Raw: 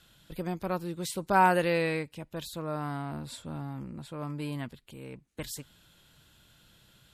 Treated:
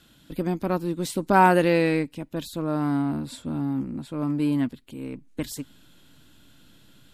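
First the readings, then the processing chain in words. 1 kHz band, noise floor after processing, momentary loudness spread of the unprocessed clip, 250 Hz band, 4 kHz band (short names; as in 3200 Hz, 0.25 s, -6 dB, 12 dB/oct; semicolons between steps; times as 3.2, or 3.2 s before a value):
+4.5 dB, -56 dBFS, 19 LU, +11.0 dB, +3.0 dB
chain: bell 270 Hz +13 dB 0.62 oct; in parallel at -11.5 dB: backlash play -25.5 dBFS; on the sum: gain +2.5 dB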